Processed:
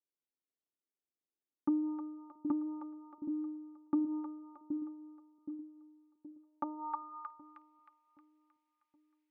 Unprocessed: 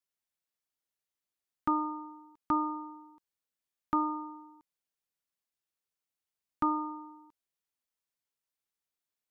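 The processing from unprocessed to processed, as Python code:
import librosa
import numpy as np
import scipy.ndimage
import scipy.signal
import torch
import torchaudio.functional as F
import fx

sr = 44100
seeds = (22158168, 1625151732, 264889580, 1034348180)

y = fx.env_lowpass_down(x, sr, base_hz=380.0, full_db=-26.5)
y = fx.echo_split(y, sr, split_hz=500.0, low_ms=772, high_ms=313, feedback_pct=52, wet_db=-6.0)
y = fx.filter_sweep_bandpass(y, sr, from_hz=320.0, to_hz=2200.0, start_s=6.13, end_s=7.59, q=2.3)
y = F.gain(torch.from_numpy(y), 3.5).numpy()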